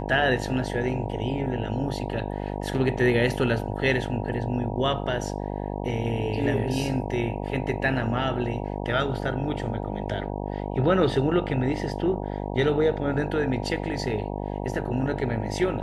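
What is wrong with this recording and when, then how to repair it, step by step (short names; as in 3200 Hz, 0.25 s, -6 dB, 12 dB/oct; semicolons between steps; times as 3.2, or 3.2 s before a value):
buzz 50 Hz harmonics 19 -31 dBFS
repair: de-hum 50 Hz, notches 19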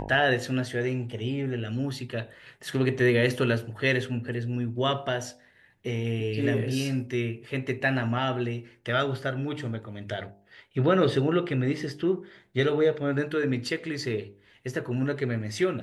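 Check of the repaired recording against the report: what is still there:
none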